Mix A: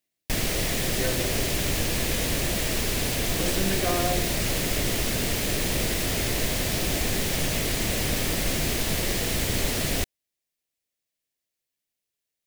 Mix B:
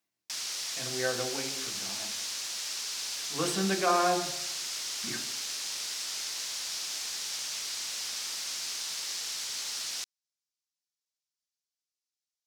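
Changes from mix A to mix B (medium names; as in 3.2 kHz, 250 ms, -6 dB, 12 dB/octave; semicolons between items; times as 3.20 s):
background: add band-pass filter 5.4 kHz, Q 1.9; master: add high-order bell 1.1 kHz +8.5 dB 1.1 oct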